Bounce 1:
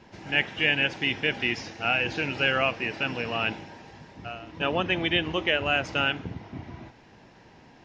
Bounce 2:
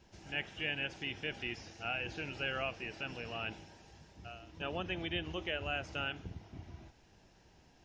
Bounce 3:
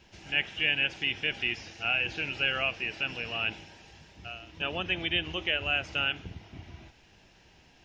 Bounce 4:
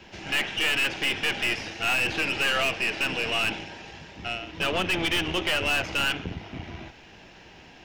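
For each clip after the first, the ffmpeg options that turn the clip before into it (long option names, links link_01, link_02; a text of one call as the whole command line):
ffmpeg -i in.wav -filter_complex "[0:a]equalizer=frequency=125:width_type=o:width=1:gain=-9,equalizer=frequency=250:width_type=o:width=1:gain=-11,equalizer=frequency=500:width_type=o:width=1:gain=-8,equalizer=frequency=1000:width_type=o:width=1:gain=-11,equalizer=frequency=2000:width_type=o:width=1:gain=-11,equalizer=frequency=4000:width_type=o:width=1:gain=-6,acrossover=split=3200[link_01][link_02];[link_02]acompressor=threshold=-55dB:ratio=4:attack=1:release=60[link_03];[link_01][link_03]amix=inputs=2:normalize=0" out.wav
ffmpeg -i in.wav -af "equalizer=frequency=2700:width_type=o:width=1.4:gain=8.5,volume=3dB" out.wav
ffmpeg -i in.wav -filter_complex "[0:a]aeval=exprs='(tanh(56.2*val(0)+0.6)-tanh(0.6))/56.2':channel_layout=same,acrossover=split=160|3500[link_01][link_02][link_03];[link_02]acontrast=71[link_04];[link_01][link_04][link_03]amix=inputs=3:normalize=0,volume=8dB" out.wav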